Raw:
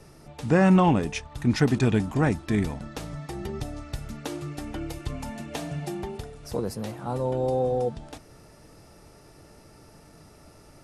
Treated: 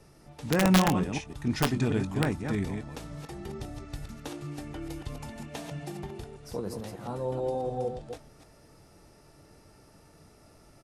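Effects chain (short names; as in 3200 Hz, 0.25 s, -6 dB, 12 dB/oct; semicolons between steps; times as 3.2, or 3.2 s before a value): reverse delay 0.148 s, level -6 dB; wrapped overs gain 9 dB; doubler 21 ms -13 dB; gain -6 dB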